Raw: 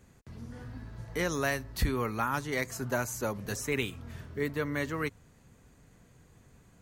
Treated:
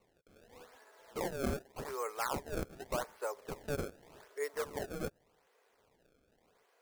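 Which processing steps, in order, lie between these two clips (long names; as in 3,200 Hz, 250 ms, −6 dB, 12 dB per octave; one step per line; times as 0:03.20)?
Chebyshev band-pass filter 420–4,400 Hz, order 4
sample-and-hold swept by an LFO 26×, swing 160% 0.85 Hz
dynamic equaliser 3,200 Hz, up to −7 dB, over −54 dBFS, Q 1.2
level −3 dB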